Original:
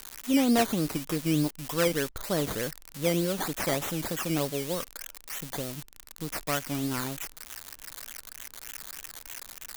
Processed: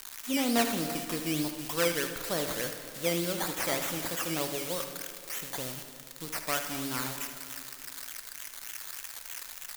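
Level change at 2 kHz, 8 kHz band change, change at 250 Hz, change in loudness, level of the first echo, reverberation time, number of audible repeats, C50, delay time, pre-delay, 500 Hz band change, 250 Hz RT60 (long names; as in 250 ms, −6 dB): +0.5 dB, +1.0 dB, −5.5 dB, −2.0 dB, −10.5 dB, 2.9 s, 1, 6.5 dB, 76 ms, 6 ms, −3.0 dB, 2.8 s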